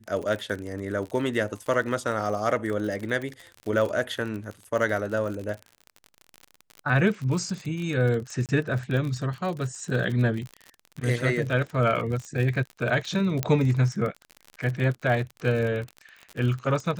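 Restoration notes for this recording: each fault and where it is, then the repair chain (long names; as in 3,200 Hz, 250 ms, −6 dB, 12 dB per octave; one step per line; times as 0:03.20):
surface crackle 44 per second −31 dBFS
0:08.46–0:08.49: drop-out 28 ms
0:13.43: click −9 dBFS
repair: click removal
repair the gap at 0:08.46, 28 ms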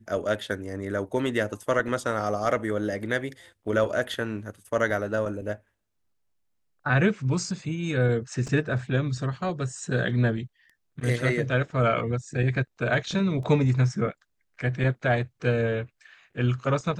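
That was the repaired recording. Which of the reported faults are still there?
0:13.43: click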